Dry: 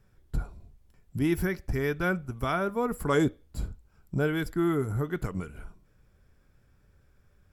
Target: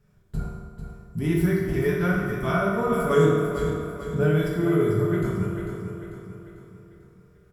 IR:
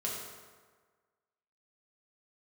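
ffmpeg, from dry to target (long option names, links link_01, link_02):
-filter_complex "[0:a]equalizer=frequency=180:width=5.6:gain=11.5,aecho=1:1:445|890|1335|1780|2225:0.398|0.187|0.0879|0.0413|0.0194[link_01];[1:a]atrim=start_sample=2205,asetrate=43218,aresample=44100[link_02];[link_01][link_02]afir=irnorm=-1:irlink=0,volume=-1dB"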